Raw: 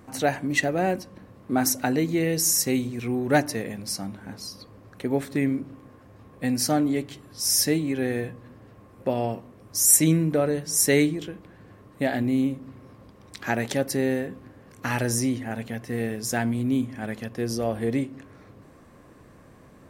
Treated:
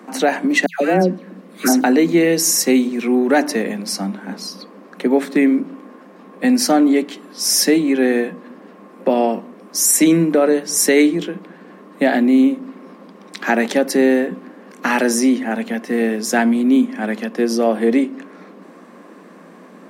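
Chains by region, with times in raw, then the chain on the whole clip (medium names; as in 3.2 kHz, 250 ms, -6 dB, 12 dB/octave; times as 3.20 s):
0.66–1.84 s: peaking EQ 940 Hz -6 dB 0.86 oct + phase dispersion lows, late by 147 ms, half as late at 1.6 kHz
whole clip: Chebyshev high-pass 170 Hz, order 10; treble shelf 6.6 kHz -8.5 dB; loudness maximiser +15 dB; trim -3.5 dB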